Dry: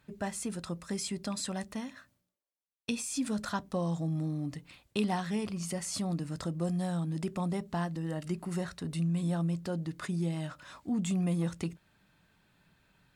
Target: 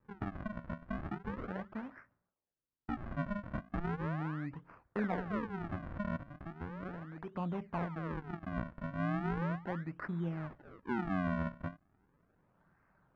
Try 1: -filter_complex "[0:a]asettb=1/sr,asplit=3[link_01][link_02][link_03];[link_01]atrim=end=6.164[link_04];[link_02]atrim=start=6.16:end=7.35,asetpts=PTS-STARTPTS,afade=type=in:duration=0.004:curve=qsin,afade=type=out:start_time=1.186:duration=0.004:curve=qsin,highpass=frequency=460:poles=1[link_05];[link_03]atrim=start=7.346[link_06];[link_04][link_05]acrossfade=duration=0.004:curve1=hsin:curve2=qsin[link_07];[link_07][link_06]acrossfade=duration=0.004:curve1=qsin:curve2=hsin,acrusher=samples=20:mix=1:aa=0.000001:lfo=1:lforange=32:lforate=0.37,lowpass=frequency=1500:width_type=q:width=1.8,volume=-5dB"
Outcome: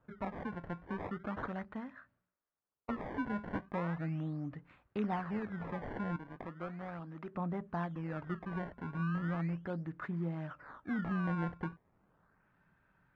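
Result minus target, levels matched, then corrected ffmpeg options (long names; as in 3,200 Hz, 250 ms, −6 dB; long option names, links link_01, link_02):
sample-and-hold swept by an LFO: distortion −10 dB
-filter_complex "[0:a]asettb=1/sr,asplit=3[link_01][link_02][link_03];[link_01]atrim=end=6.164[link_04];[link_02]atrim=start=6.16:end=7.35,asetpts=PTS-STARTPTS,afade=type=in:duration=0.004:curve=qsin,afade=type=out:start_time=1.186:duration=0.004:curve=qsin,highpass=frequency=460:poles=1[link_05];[link_03]atrim=start=7.346[link_06];[link_04][link_05]acrossfade=duration=0.004:curve1=hsin:curve2=qsin[link_07];[link_07][link_06]acrossfade=duration=0.004:curve1=qsin:curve2=hsin,acrusher=samples=60:mix=1:aa=0.000001:lfo=1:lforange=96:lforate=0.37,lowpass=frequency=1500:width_type=q:width=1.8,volume=-5dB"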